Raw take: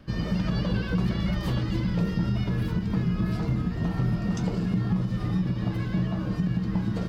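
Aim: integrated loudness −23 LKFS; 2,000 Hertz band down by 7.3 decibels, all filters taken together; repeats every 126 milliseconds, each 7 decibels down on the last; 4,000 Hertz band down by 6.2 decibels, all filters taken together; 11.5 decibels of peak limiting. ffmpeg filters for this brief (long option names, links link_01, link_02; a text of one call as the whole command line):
ffmpeg -i in.wav -af "equalizer=frequency=2000:width_type=o:gain=-8.5,equalizer=frequency=4000:width_type=o:gain=-5,alimiter=level_in=2.5dB:limit=-24dB:level=0:latency=1,volume=-2.5dB,aecho=1:1:126|252|378|504|630:0.447|0.201|0.0905|0.0407|0.0183,volume=10dB" out.wav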